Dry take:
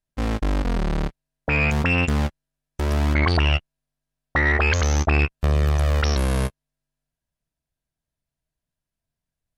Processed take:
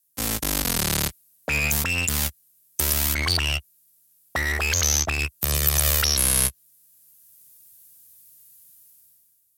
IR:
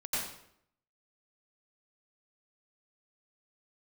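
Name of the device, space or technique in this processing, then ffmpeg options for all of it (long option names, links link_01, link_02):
FM broadcast chain: -filter_complex "[0:a]highpass=frequency=64:width=0.5412,highpass=frequency=64:width=1.3066,dynaudnorm=framelen=110:gausssize=13:maxgain=16dB,acrossover=split=97|1300|5400[link_01][link_02][link_03][link_04];[link_01]acompressor=threshold=-20dB:ratio=4[link_05];[link_02]acompressor=threshold=-23dB:ratio=4[link_06];[link_03]acompressor=threshold=-23dB:ratio=4[link_07];[link_04]acompressor=threshold=-38dB:ratio=4[link_08];[link_05][link_06][link_07][link_08]amix=inputs=4:normalize=0,aemphasis=mode=production:type=75fm,alimiter=limit=-11.5dB:level=0:latency=1:release=104,asoftclip=type=hard:threshold=-14dB,lowpass=frequency=15000:width=0.5412,lowpass=frequency=15000:width=1.3066,aemphasis=mode=production:type=75fm,volume=-3.5dB"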